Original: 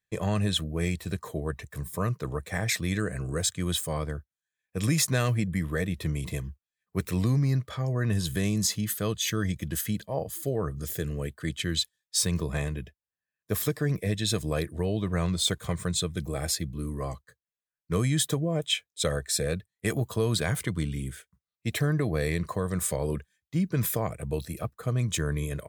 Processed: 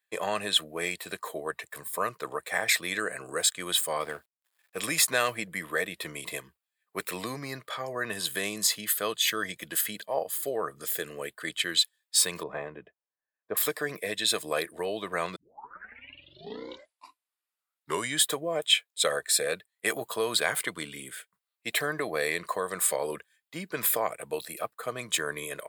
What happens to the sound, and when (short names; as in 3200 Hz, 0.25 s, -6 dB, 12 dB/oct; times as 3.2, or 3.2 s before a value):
4–4.81 G.711 law mismatch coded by mu
12.43–13.57 Bessel low-pass 1000 Hz
15.36 tape start 2.87 s
whole clip: HPF 600 Hz 12 dB/oct; bell 6000 Hz -9.5 dB 0.34 oct; gain +5.5 dB